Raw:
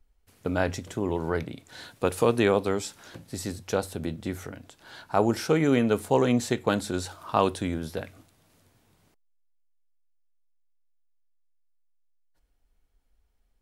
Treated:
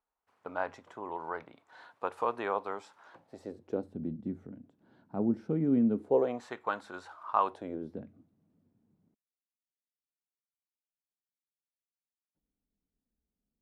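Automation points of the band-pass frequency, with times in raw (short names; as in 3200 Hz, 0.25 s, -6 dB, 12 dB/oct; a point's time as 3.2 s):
band-pass, Q 2.3
3.13 s 1000 Hz
3.94 s 220 Hz
5.93 s 220 Hz
6.43 s 1100 Hz
7.43 s 1100 Hz
8.02 s 210 Hz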